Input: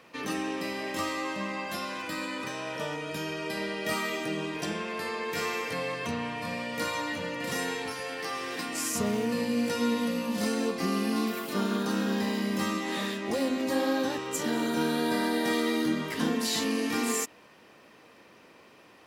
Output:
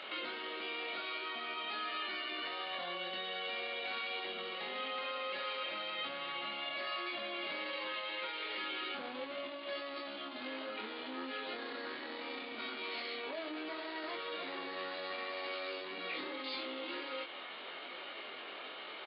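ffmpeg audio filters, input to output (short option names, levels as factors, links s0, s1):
-filter_complex "[0:a]aresample=8000,asoftclip=type=tanh:threshold=0.0316,aresample=44100,alimiter=level_in=5.31:limit=0.0631:level=0:latency=1:release=21,volume=0.188,acompressor=threshold=0.00447:ratio=4,equalizer=f=2700:w=0.4:g=6.5,asetrate=52444,aresample=44100,atempo=0.840896,highpass=340,asplit=2[s0][s1];[s1]adelay=23,volume=0.631[s2];[s0][s2]amix=inputs=2:normalize=0,volume=1.68"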